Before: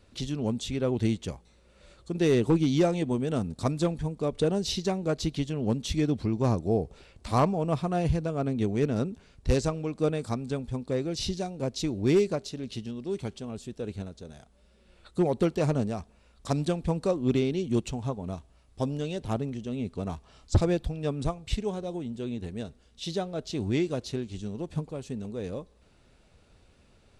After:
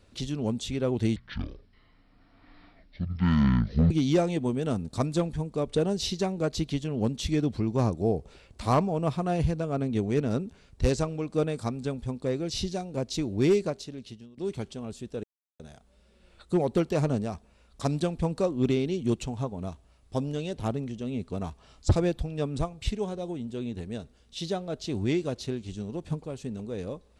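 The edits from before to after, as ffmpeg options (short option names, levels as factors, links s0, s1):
-filter_complex "[0:a]asplit=6[s0][s1][s2][s3][s4][s5];[s0]atrim=end=1.164[s6];[s1]atrim=start=1.16:end=2.56,asetpts=PTS-STARTPTS,asetrate=22491,aresample=44100[s7];[s2]atrim=start=2.556:end=13.03,asetpts=PTS-STARTPTS,afade=t=out:st=9.754:d=0.72:silence=0.112202[s8];[s3]atrim=start=13.03:end=13.89,asetpts=PTS-STARTPTS,afade=t=in:d=0.004:c=hsin:silence=0.112202,afade=t=out:st=0.856:d=0.004:c=hsin[s9];[s4]atrim=start=13.89:end=14.25,asetpts=PTS-STARTPTS,volume=0[s10];[s5]atrim=start=14.25,asetpts=PTS-STARTPTS,afade=t=in:d=0.004:c=hsin[s11];[s6][s7]acrossfade=d=0.004:c1=hsin:c2=hsin[s12];[s8][s9][s10][s11]concat=n=4:v=0:a=1[s13];[s12][s13]acrossfade=d=0.004:c1=hsin:c2=hsin"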